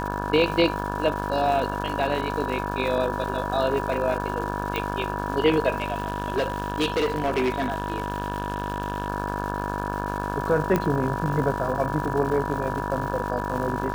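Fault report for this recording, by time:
mains buzz 50 Hz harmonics 35 −30 dBFS
surface crackle 430 per second −33 dBFS
whistle 970 Hz −31 dBFS
0:04.76: click
0:05.80–0:09.10: clipping −19 dBFS
0:10.76: click −10 dBFS

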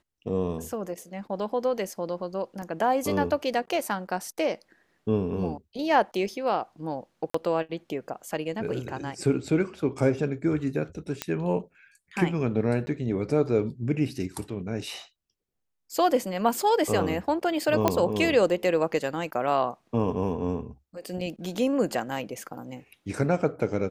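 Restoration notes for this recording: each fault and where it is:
0:02.62: drop-out 3.5 ms
0:07.30–0:07.34: drop-out 44 ms
0:11.22: click −11 dBFS
0:12.86–0:12.87: drop-out 10 ms
0:17.88: click −7 dBFS

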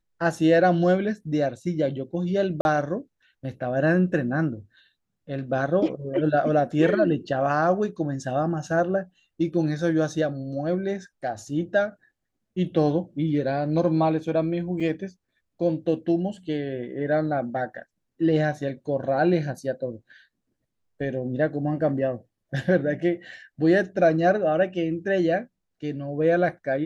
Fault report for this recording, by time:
0:02.61–0:02.65: drop-out 41 ms
0:14.80: drop-out 4.9 ms

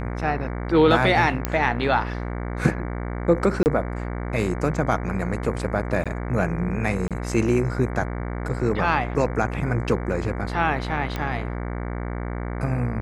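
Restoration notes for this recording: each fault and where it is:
mains buzz 60 Hz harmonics 38 −29 dBFS
0:01.45: click −7 dBFS
0:03.63–0:03.66: drop-out 29 ms
0:06.04–0:06.06: drop-out 16 ms
0:07.08–0:07.11: drop-out 27 ms
0:11.16: click −14 dBFS

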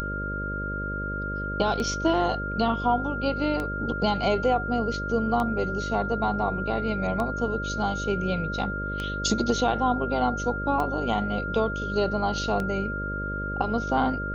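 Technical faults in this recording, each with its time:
mains buzz 50 Hz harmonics 12 −33 dBFS
scratch tick 33 1/3 rpm −17 dBFS
whistle 1,400 Hz −31 dBFS

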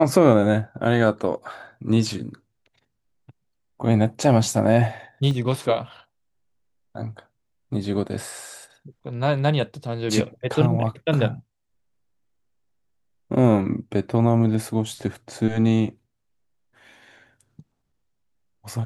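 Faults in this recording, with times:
0:05.31: drop-out 2.1 ms

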